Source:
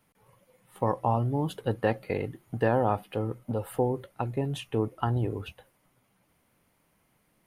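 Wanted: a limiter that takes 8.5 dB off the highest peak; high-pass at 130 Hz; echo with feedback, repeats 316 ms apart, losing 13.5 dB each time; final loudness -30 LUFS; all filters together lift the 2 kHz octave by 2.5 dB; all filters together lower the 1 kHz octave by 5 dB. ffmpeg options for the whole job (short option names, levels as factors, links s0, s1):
-af "highpass=130,equalizer=f=1000:t=o:g=-8,equalizer=f=2000:t=o:g=5.5,alimiter=limit=0.0841:level=0:latency=1,aecho=1:1:316|632:0.211|0.0444,volume=1.78"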